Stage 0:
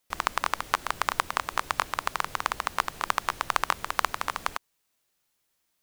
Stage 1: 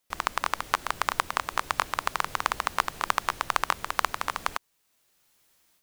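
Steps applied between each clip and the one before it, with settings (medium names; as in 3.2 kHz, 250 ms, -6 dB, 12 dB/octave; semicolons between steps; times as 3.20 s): level rider gain up to 11 dB; trim -1 dB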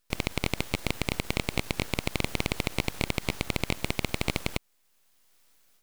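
full-wave rectifier; loudness maximiser +9.5 dB; trim -5.5 dB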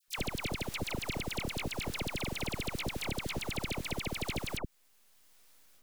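compression 5:1, threshold -30 dBFS, peak gain reduction 10 dB; phase dispersion lows, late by 83 ms, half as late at 1.3 kHz; trim +1.5 dB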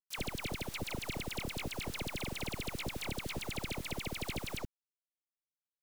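word length cut 8-bit, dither none; trim -3 dB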